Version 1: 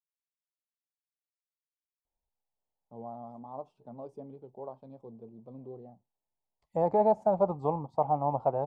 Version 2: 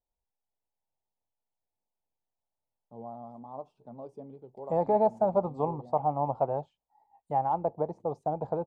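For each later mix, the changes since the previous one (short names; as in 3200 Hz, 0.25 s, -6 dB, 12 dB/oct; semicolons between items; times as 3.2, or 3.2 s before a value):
second voice: entry -2.05 s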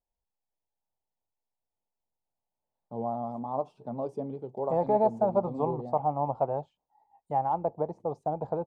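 first voice +10.0 dB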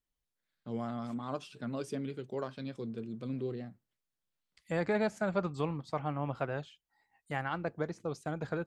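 first voice: entry -2.25 s; master: remove EQ curve 330 Hz 0 dB, 880 Hz +14 dB, 1500 Hz -19 dB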